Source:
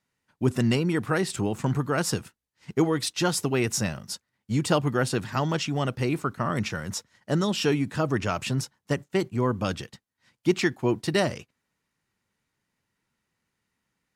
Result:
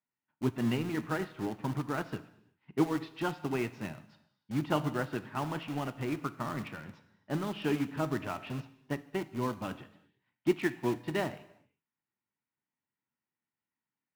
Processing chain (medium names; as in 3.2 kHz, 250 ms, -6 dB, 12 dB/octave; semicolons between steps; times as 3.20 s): cabinet simulation 110–3000 Hz, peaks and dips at 290 Hz +4 dB, 480 Hz -4 dB, 890 Hz +5 dB; in parallel at -10.5 dB: integer overflow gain 24.5 dB; on the sum: gated-style reverb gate 400 ms falling, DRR 8 dB; upward expansion 1.5:1, over -41 dBFS; trim -5.5 dB